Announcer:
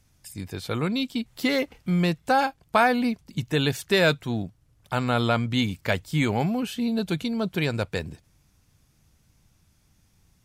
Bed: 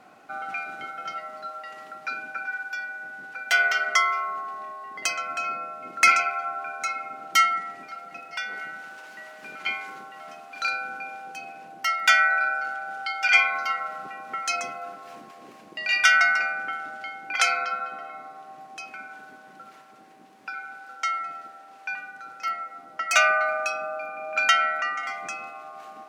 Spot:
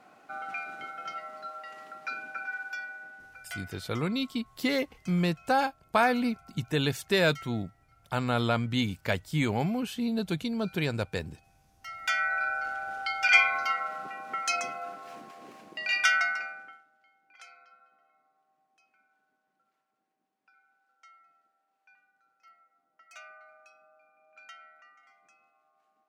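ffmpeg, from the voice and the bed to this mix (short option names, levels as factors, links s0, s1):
-filter_complex "[0:a]adelay=3200,volume=0.631[s0];[1:a]volume=10.6,afade=t=out:st=2.72:d=0.94:silence=0.0749894,afade=t=in:st=11.76:d=1.08:silence=0.0562341,afade=t=out:st=15.58:d=1.27:silence=0.0398107[s1];[s0][s1]amix=inputs=2:normalize=0"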